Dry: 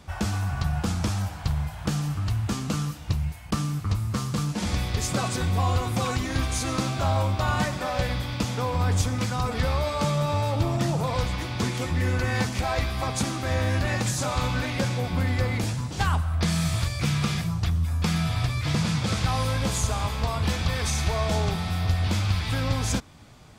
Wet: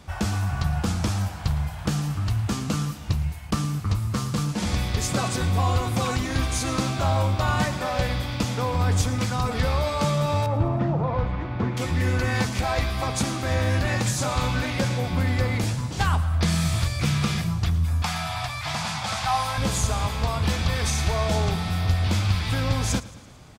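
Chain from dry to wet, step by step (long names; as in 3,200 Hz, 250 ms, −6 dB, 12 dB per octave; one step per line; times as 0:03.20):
0:10.46–0:11.77: low-pass filter 1,500 Hz 12 dB per octave
0:18.02–0:19.58: low shelf with overshoot 560 Hz −10 dB, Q 3
repeating echo 111 ms, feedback 60%, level −19 dB
level +1.5 dB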